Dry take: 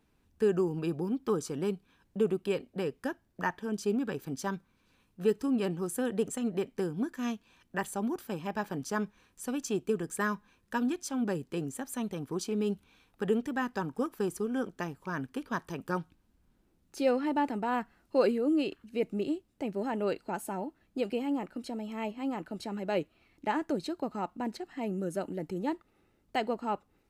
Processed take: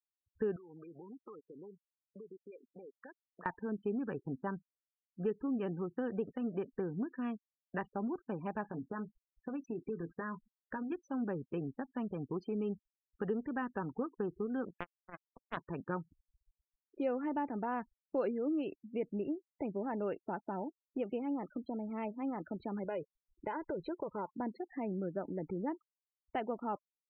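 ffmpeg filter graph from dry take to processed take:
-filter_complex "[0:a]asettb=1/sr,asplit=3[a][b][c];[a]atrim=end=0.564[d];[b]atrim=start=0.56:end=3.46,asetpts=PTS-STARTPTS,afade=t=in:d=0.004:c=qsin,afade=t=out:st=2.896:d=0.004:c=qsin,highpass=f=960:p=1,acompressor=threshold=-47dB:ratio=16:attack=3.2:release=140:knee=1:detection=peak[e];[c]atrim=start=3.456[f];[d][e]acrossfade=d=0.004:c1=hsin:c2=qsin[g];[g][f]acrossfade=d=0.004:c1=qsin:c2=hsin,asettb=1/sr,asplit=3[h][i][j];[h]atrim=end=8.694[k];[i]atrim=start=8.69:end=10.92,asetpts=PTS-STARTPTS,afade=t=in:d=0.004:c=qsin,afade=t=out:st=2.226:d=0.004:c=qsin,acompressor=threshold=-36dB:ratio=3:attack=3.2:release=140:knee=1:detection=peak,asplit=2[l][m];[m]adelay=18,volume=-9dB[n];[l][n]amix=inputs=2:normalize=0,atrim=end_sample=98343[o];[j]atrim=start=10.916[p];[k][o]acrossfade=d=0.004:c1=hsin:c2=qsin[q];[q][p]acrossfade=d=0.004:c1=qsin:c2=hsin,asettb=1/sr,asplit=3[r][s][t];[r]atrim=end=14.784[u];[s]atrim=start=14.78:end=15.57,asetpts=PTS-STARTPTS,afade=t=in:d=0.004:c=qsin,afade=t=out:st=0.786:d=0.004:c=qsin,bandreject=f=50:t=h:w=6,bandreject=f=100:t=h:w=6,bandreject=f=150:t=h:w=6,bandreject=f=200:t=h:w=6,bandreject=f=250:t=h:w=6,acrusher=bits=3:mix=0:aa=0.5[v];[t]atrim=start=15.566[w];[u][v]acrossfade=d=0.004:c1=hsin:c2=qsin[x];[x][w]acrossfade=d=0.004:c1=qsin:c2=hsin,asettb=1/sr,asplit=3[y][z][aa];[y]atrim=end=22.844[ab];[z]atrim=start=22.84:end=24.33,asetpts=PTS-STARTPTS,afade=t=in:d=0.004:c=qsin,afade=t=out:st=1.486:d=0.004:c=qsin,aecho=1:1:2:0.69,atrim=end_sample=65709,acompressor=threshold=-31dB:ratio=4:attack=3.2:release=140:knee=1:detection=peak[ac];[aa]atrim=start=24.326[ad];[ab][ac]acrossfade=d=0.004:c1=hsin:c2=qsin[ae];[ae][ad]acrossfade=d=0.004:c1=qsin:c2=hsin,lowpass=2k,afftfilt=real='re*gte(hypot(re,im),0.00562)':imag='im*gte(hypot(re,im),0.00562)':win_size=1024:overlap=0.75,acompressor=threshold=-39dB:ratio=2,volume=1dB"

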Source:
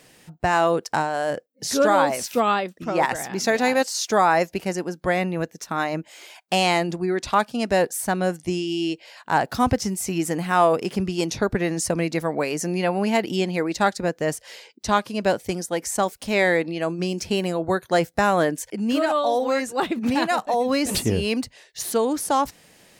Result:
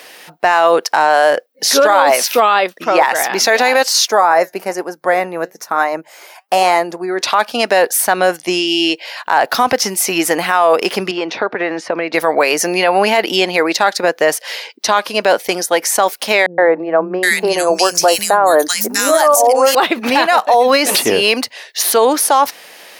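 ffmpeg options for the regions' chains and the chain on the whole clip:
-filter_complex "[0:a]asettb=1/sr,asplit=3[a][b][c];[a]atrim=end=4.084[d];[b]atrim=start=4.08:end=7.21,asetpts=PTS-STARTPTS,afade=t=in:d=0.004:c=qsin,afade=t=out:st=3.126:d=0.004:c=qsin,equalizer=f=3.2k:t=o:w=1.3:g=-12.5,bandreject=f=50:t=h:w=6,bandreject=f=100:t=h:w=6,bandreject=f=150:t=h:w=6,flanger=delay=0.9:depth=4.7:regen=81:speed=1.1:shape=sinusoidal[e];[c]atrim=start=7.206[f];[d][e]acrossfade=d=0.004:c1=hsin:c2=qsin[g];[g][f]acrossfade=d=0.004:c1=qsin:c2=hsin,asettb=1/sr,asplit=3[h][i][j];[h]atrim=end=11.114[k];[i]atrim=start=11.11:end=12.14,asetpts=PTS-STARTPTS,afade=t=in:d=0.004:c=qsin,afade=t=out:st=1.026:d=0.004:c=qsin,acompressor=threshold=-23dB:ratio=10:attack=3.2:release=140:knee=1:detection=peak,highpass=170,lowpass=2.4k[l];[j]atrim=start=12.136[m];[k][l]acrossfade=d=0.004:c1=hsin:c2=qsin[n];[n][m]acrossfade=d=0.004:c1=qsin:c2=hsin,asettb=1/sr,asplit=3[o][p][q];[o]atrim=end=16.464[r];[p]atrim=start=16.46:end=19.75,asetpts=PTS-STARTPTS,afade=t=in:d=0.004:c=qsin,afade=t=out:st=3.286:d=0.004:c=qsin,highshelf=f=4.6k:t=q:w=1.5:g=13,acrossover=split=220|1600[s][t][u];[t]adelay=120[v];[u]adelay=770[w];[s][v][w]amix=inputs=3:normalize=0,atrim=end_sample=145089[x];[q]atrim=start=19.746[y];[r][x]acrossfade=d=0.004:c1=hsin:c2=qsin[z];[z][y]acrossfade=d=0.004:c1=qsin:c2=hsin,highpass=570,equalizer=f=7.7k:t=o:w=0.56:g=-9,alimiter=level_in=18.5dB:limit=-1dB:release=50:level=0:latency=1,volume=-1dB"

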